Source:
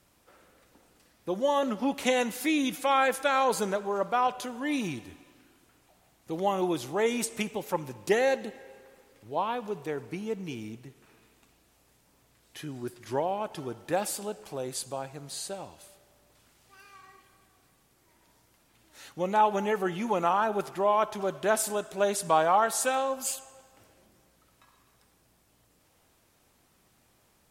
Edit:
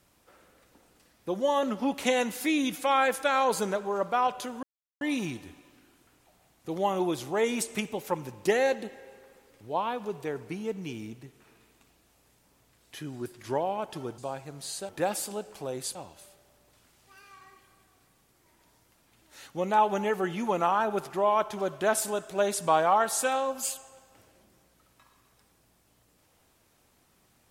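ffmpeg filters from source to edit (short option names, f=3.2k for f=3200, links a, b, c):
-filter_complex "[0:a]asplit=5[a][b][c][d][e];[a]atrim=end=4.63,asetpts=PTS-STARTPTS,afade=t=out:st=4.626:d=0.004:c=hsin,apad=pad_dur=0.38[f];[b]atrim=start=4.63:end=13.802,asetpts=PTS-STARTPTS,afade=t=in:d=0.004:c=hsin[g];[c]atrim=start=14.858:end=15.572[h];[d]atrim=start=13.798:end=14.862[i];[e]atrim=start=15.568[j];[f][g]concat=n=2:v=0:a=1[k];[k][h]acrossfade=d=0.004:c1=hsin:c2=hsin[l];[l][i]acrossfade=d=0.004:c1=hsin:c2=hsin[m];[m][j]acrossfade=d=0.004:c1=hsin:c2=hsin"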